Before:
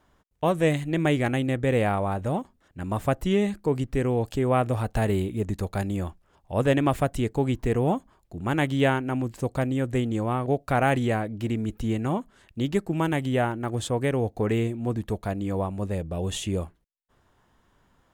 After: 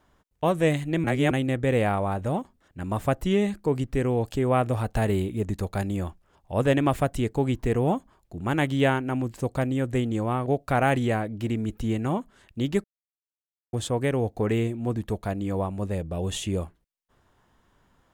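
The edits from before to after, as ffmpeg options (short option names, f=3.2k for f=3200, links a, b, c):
-filter_complex "[0:a]asplit=5[a][b][c][d][e];[a]atrim=end=1.042[f];[b]atrim=start=1.038:end=1.312,asetpts=PTS-STARTPTS,areverse[g];[c]atrim=start=1.308:end=12.84,asetpts=PTS-STARTPTS,afade=t=out:st=11.528:d=0.004:c=hsin[h];[d]atrim=start=12.84:end=13.73,asetpts=PTS-STARTPTS,volume=0[i];[e]atrim=start=13.73,asetpts=PTS-STARTPTS,afade=t=in:d=0.004:c=hsin[j];[f][g]acrossfade=d=0.004:c1=hsin:c2=hsin[k];[h][i][j]concat=n=3:v=0:a=1[l];[k][l]acrossfade=d=0.004:c1=hsin:c2=hsin"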